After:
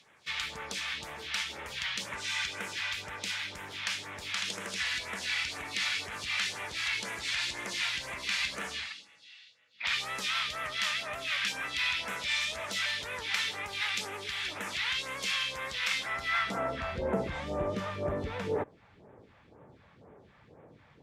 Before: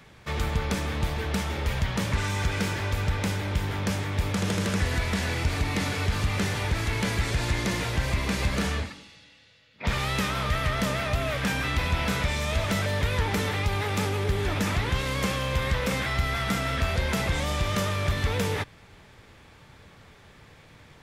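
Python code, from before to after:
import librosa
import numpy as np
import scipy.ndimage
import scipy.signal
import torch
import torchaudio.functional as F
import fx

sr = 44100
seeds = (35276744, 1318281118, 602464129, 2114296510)

y = fx.filter_sweep_bandpass(x, sr, from_hz=3000.0, to_hz=480.0, start_s=16.01, end_s=16.93, q=0.93)
y = fx.dynamic_eq(y, sr, hz=110.0, q=0.88, threshold_db=-55.0, ratio=4.0, max_db=-5)
y = fx.phaser_stages(y, sr, stages=2, low_hz=330.0, high_hz=4300.0, hz=2.0, feedback_pct=25)
y = F.gain(torch.from_numpy(y), 4.0).numpy()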